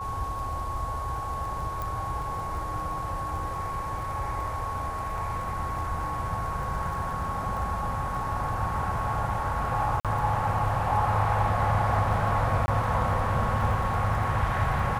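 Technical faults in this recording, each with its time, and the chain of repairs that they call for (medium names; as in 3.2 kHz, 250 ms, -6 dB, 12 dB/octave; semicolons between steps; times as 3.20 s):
crackle 21 per s -35 dBFS
whine 1.1 kHz -32 dBFS
1.82 s: pop
10.00–10.05 s: dropout 47 ms
12.66–12.68 s: dropout 20 ms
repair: de-click; band-stop 1.1 kHz, Q 30; interpolate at 10.00 s, 47 ms; interpolate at 12.66 s, 20 ms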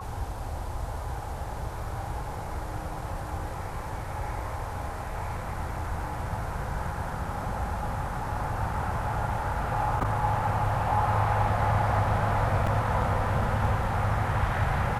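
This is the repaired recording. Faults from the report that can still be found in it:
1.82 s: pop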